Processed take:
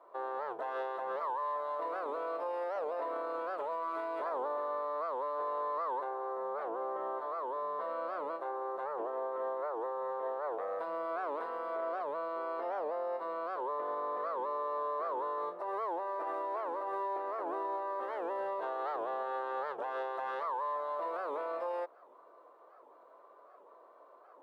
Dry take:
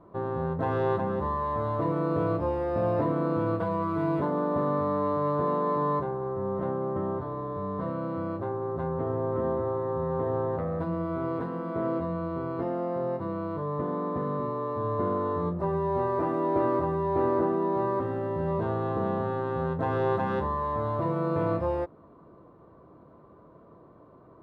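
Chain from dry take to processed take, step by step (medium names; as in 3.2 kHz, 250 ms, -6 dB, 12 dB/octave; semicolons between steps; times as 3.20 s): high-pass 530 Hz 24 dB/octave; peak limiter -29 dBFS, peak gain reduction 10 dB; warped record 78 rpm, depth 250 cents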